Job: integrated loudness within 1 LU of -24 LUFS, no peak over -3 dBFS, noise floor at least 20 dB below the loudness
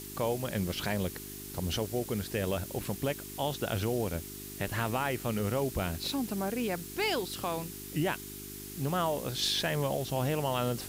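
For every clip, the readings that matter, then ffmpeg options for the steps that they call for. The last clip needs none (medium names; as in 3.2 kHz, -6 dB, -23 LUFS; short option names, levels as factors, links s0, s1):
hum 50 Hz; highest harmonic 400 Hz; hum level -45 dBFS; noise floor -44 dBFS; noise floor target -53 dBFS; loudness -33.0 LUFS; peak level -17.5 dBFS; loudness target -24.0 LUFS
-> -af "bandreject=f=50:t=h:w=4,bandreject=f=100:t=h:w=4,bandreject=f=150:t=h:w=4,bandreject=f=200:t=h:w=4,bandreject=f=250:t=h:w=4,bandreject=f=300:t=h:w=4,bandreject=f=350:t=h:w=4,bandreject=f=400:t=h:w=4"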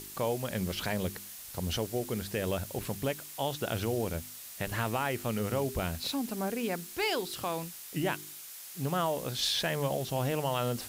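hum not found; noise floor -46 dBFS; noise floor target -53 dBFS
-> -af "afftdn=nr=7:nf=-46"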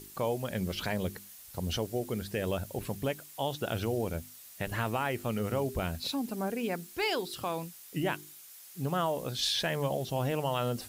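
noise floor -51 dBFS; noise floor target -54 dBFS
-> -af "afftdn=nr=6:nf=-51"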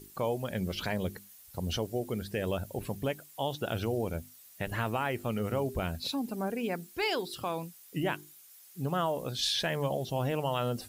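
noise floor -55 dBFS; loudness -33.5 LUFS; peak level -18.0 dBFS; loudness target -24.0 LUFS
-> -af "volume=2.99"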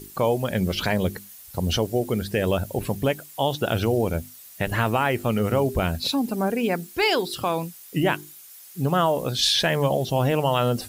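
loudness -24.0 LUFS; peak level -8.5 dBFS; noise floor -46 dBFS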